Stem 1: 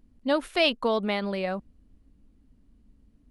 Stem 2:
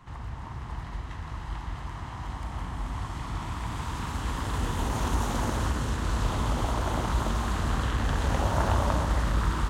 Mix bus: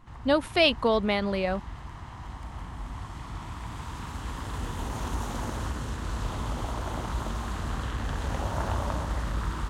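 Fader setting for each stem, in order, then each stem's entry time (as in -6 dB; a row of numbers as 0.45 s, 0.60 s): +1.5 dB, -4.5 dB; 0.00 s, 0.00 s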